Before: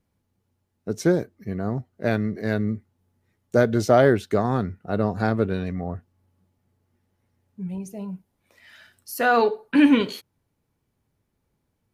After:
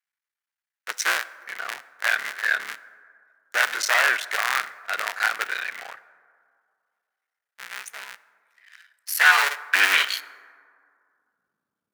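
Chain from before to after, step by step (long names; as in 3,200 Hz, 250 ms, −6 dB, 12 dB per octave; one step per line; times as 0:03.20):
sub-harmonics by changed cycles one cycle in 3, muted
parametric band 200 Hz −8 dB 1.7 octaves
leveller curve on the samples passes 3
high-pass filter sweep 1,700 Hz → 200 Hz, 0:10.29–0:11.39
dense smooth reverb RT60 2.2 s, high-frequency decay 0.35×, DRR 16 dB
level −2 dB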